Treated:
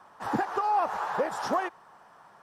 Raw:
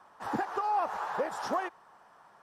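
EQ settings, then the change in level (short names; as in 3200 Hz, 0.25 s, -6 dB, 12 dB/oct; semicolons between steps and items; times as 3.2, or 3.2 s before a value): bell 140 Hz +3 dB 1.2 oct; +3.5 dB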